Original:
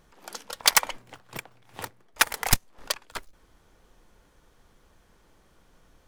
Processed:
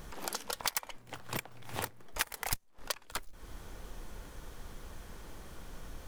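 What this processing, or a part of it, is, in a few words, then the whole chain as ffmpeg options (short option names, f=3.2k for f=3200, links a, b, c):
ASMR close-microphone chain: -af "lowshelf=f=110:g=5.5,acompressor=threshold=-45dB:ratio=6,highshelf=f=10k:g=6,volume=10dB"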